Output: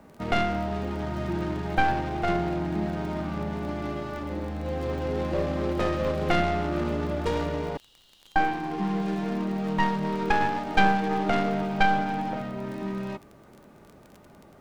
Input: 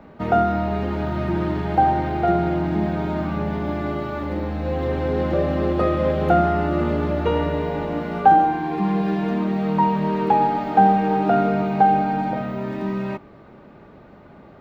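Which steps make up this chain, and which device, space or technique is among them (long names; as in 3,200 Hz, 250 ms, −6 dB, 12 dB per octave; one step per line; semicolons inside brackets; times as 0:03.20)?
0:07.77–0:08.36: Butterworth high-pass 2,900 Hz 96 dB per octave
record under a worn stylus (stylus tracing distortion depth 0.5 ms; surface crackle 25 per second −30 dBFS; pink noise bed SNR 40 dB)
level −6.5 dB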